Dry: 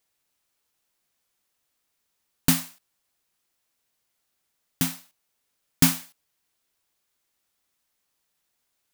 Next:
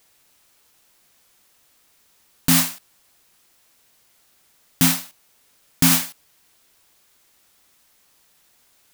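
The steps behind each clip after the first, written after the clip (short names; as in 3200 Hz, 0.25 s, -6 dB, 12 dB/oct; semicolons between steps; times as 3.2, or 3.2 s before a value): in parallel at +0.5 dB: negative-ratio compressor -23 dBFS; on the sum: maximiser +12 dB; gain -3.5 dB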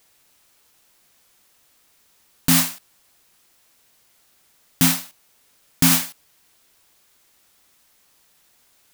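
nothing audible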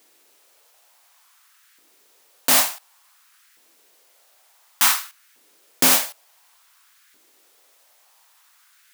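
octaver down 2 oct, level -2 dB; LFO high-pass saw up 0.56 Hz 290–1700 Hz; gain +1.5 dB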